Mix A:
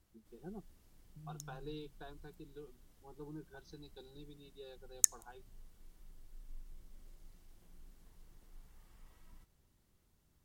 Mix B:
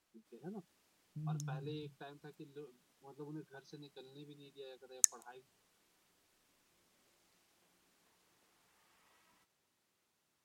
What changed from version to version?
second voice +9.0 dB; background: add weighting filter A; master: remove notch 2500 Hz, Q 19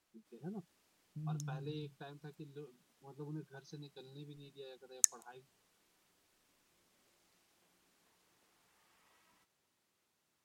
first voice: remove BPF 200–5300 Hz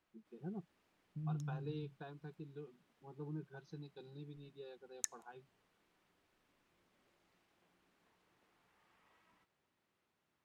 master: add tone controls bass +1 dB, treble -13 dB

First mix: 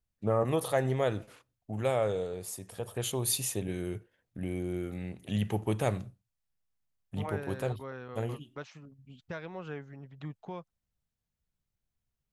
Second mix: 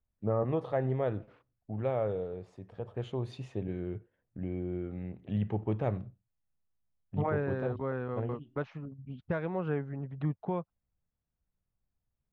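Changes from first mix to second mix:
second voice +10.0 dB; master: add tape spacing loss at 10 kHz 45 dB

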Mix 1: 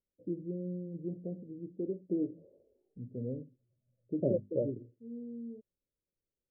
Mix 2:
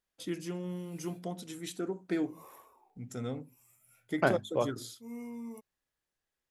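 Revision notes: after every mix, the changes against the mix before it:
master: remove Chebyshev low-pass 580 Hz, order 6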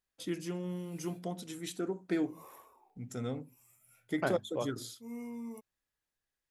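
second voice -6.0 dB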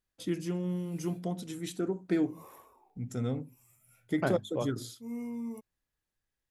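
master: add low shelf 290 Hz +8 dB

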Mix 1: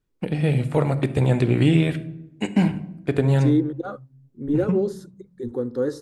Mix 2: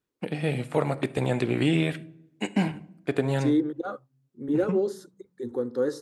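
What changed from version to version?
first voice: send -8.5 dB; master: add HPF 320 Hz 6 dB/oct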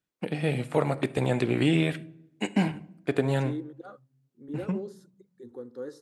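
second voice -12.0 dB

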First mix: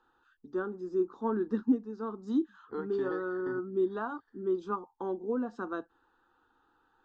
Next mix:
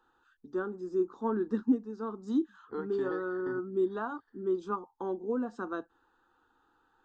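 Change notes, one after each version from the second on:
first voice: remove LPF 6000 Hz 12 dB/oct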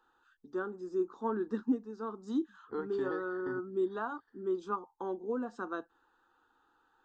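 first voice: add low shelf 330 Hz -6.5 dB

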